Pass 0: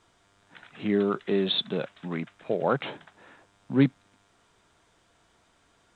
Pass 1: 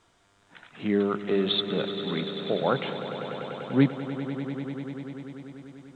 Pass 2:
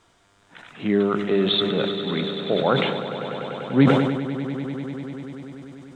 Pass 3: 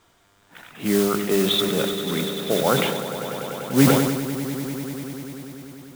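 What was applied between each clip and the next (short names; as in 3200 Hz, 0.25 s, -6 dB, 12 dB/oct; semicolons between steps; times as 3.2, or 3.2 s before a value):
swelling echo 98 ms, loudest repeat 5, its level -14 dB
sustainer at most 38 dB/s; gain +4 dB
modulation noise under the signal 11 dB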